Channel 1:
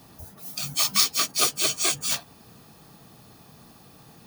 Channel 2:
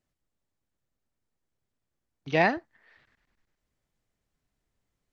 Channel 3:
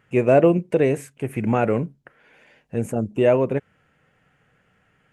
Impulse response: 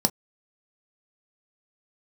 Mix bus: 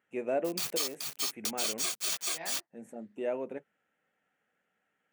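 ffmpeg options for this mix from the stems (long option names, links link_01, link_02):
-filter_complex "[0:a]acrusher=bits=4:mix=0:aa=0.000001,volume=-3dB,asplit=3[link_01][link_02][link_03];[link_01]atrim=end=0.92,asetpts=PTS-STARTPTS,afade=type=out:start_time=0.916:duration=0.004:curve=hsin[link_04];[link_02]atrim=start=0.92:end=1.45,asetpts=PTS-STARTPTS,volume=0[link_05];[link_03]atrim=start=1.45,asetpts=PTS-STARTPTS,afade=type=in:duration=0.004:curve=hsin[link_06];[link_04][link_05][link_06]concat=n=3:v=0:a=1,asplit=2[link_07][link_08];[link_08]volume=-4dB[link_09];[1:a]flanger=delay=18:depth=7.7:speed=2.5,volume=-10dB,afade=type=in:start_time=2.31:duration=0.29:silence=0.334965,asplit=2[link_10][link_11];[2:a]volume=-15.5dB,asplit=2[link_12][link_13];[link_13]volume=-20dB[link_14];[link_11]apad=whole_len=226197[link_15];[link_12][link_15]sidechaincompress=threshold=-46dB:ratio=8:attack=5.2:release=846[link_16];[3:a]atrim=start_sample=2205[link_17];[link_14][link_17]afir=irnorm=-1:irlink=0[link_18];[link_09]aecho=0:1:429:1[link_19];[link_07][link_10][link_16][link_18][link_19]amix=inputs=5:normalize=0,highpass=frequency=490:poles=1,alimiter=limit=-20.5dB:level=0:latency=1:release=245"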